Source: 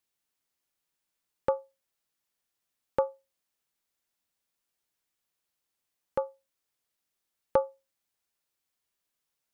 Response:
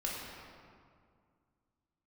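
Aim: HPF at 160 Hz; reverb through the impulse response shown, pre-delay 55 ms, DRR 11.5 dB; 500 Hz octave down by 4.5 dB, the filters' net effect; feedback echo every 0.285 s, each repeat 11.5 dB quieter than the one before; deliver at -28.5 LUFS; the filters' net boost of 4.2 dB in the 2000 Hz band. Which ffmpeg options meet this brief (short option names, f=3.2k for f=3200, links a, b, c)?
-filter_complex "[0:a]highpass=160,equalizer=f=500:t=o:g=-5,equalizer=f=2k:t=o:g=6.5,aecho=1:1:285|570|855:0.266|0.0718|0.0194,asplit=2[a][b];[1:a]atrim=start_sample=2205,adelay=55[c];[b][c]afir=irnorm=-1:irlink=0,volume=-15dB[d];[a][d]amix=inputs=2:normalize=0,volume=10dB"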